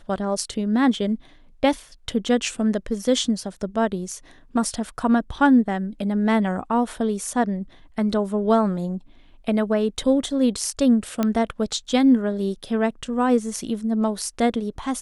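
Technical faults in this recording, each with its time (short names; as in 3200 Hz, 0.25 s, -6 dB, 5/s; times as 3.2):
11.23 pop -9 dBFS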